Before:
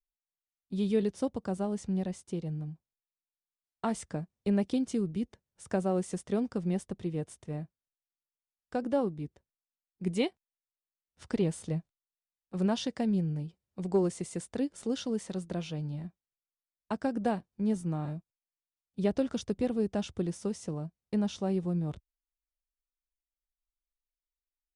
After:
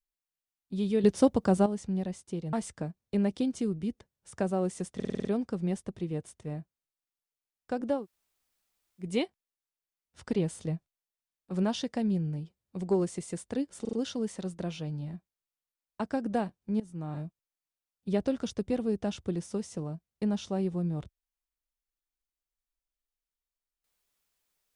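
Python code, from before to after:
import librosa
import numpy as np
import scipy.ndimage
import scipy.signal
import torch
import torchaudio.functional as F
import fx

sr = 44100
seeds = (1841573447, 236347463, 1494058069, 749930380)

y = fx.edit(x, sr, fx.clip_gain(start_s=1.04, length_s=0.62, db=9.0),
    fx.cut(start_s=2.53, length_s=1.33),
    fx.stutter(start_s=6.28, slice_s=0.05, count=7),
    fx.room_tone_fill(start_s=9.02, length_s=1.06, crossfade_s=0.16),
    fx.stutter(start_s=14.84, slice_s=0.04, count=4),
    fx.fade_in_from(start_s=17.71, length_s=0.41, floor_db=-19.0), tone=tone)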